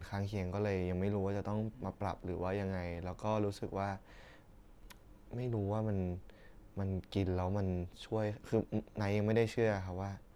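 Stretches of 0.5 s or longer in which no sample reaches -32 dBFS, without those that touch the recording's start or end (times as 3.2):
3.93–5.36
6.13–6.77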